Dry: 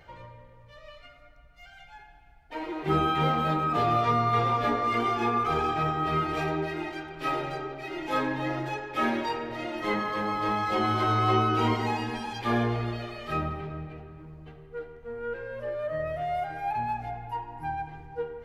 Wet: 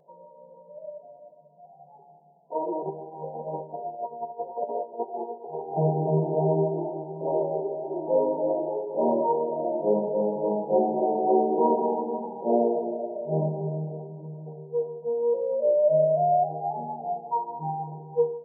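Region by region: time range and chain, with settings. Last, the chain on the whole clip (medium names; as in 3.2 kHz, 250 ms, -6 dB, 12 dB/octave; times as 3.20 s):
2.83–5.77 s: high-pass 1.3 kHz 6 dB/octave + compressor with a negative ratio -34 dBFS, ratio -0.5
whole clip: FFT band-pass 150–980 Hz; comb 1.8 ms, depth 77%; level rider gain up to 11.5 dB; trim -4.5 dB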